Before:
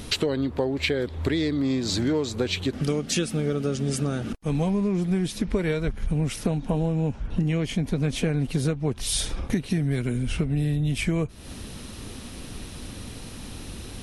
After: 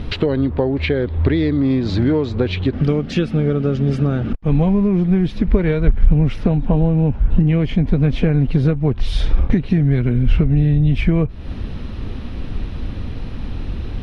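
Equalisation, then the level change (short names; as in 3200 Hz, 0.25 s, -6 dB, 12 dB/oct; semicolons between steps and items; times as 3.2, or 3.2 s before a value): air absorption 320 m; low shelf 90 Hz +11.5 dB; +7.0 dB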